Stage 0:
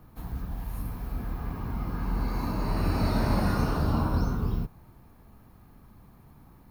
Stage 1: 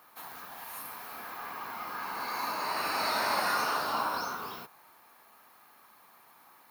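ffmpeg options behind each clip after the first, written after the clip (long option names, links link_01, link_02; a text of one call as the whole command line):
ffmpeg -i in.wav -af "highpass=970,volume=7.5dB" out.wav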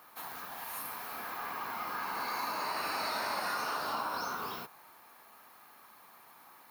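ffmpeg -i in.wav -af "acompressor=threshold=-34dB:ratio=4,volume=1.5dB" out.wav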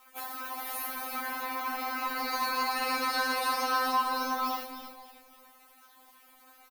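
ffmpeg -i in.wav -filter_complex "[0:a]aeval=exprs='sgn(val(0))*max(abs(val(0))-0.00119,0)':channel_layout=same,asplit=5[link_01][link_02][link_03][link_04][link_05];[link_02]adelay=275,afreqshift=-130,volume=-9dB[link_06];[link_03]adelay=550,afreqshift=-260,volume=-18.1dB[link_07];[link_04]adelay=825,afreqshift=-390,volume=-27.2dB[link_08];[link_05]adelay=1100,afreqshift=-520,volume=-36.4dB[link_09];[link_01][link_06][link_07][link_08][link_09]amix=inputs=5:normalize=0,afftfilt=real='re*3.46*eq(mod(b,12),0)':imag='im*3.46*eq(mod(b,12),0)':win_size=2048:overlap=0.75,volume=8dB" out.wav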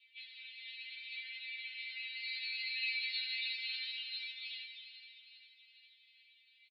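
ffmpeg -i in.wav -af "flanger=delay=8.5:depth=8.1:regen=72:speed=0.7:shape=sinusoidal,asuperpass=centerf=3000:order=12:qfactor=1.4,aecho=1:1:405|810|1215|1620|2025|2430:0.224|0.128|0.0727|0.0415|0.0236|0.0135,volume=5.5dB" out.wav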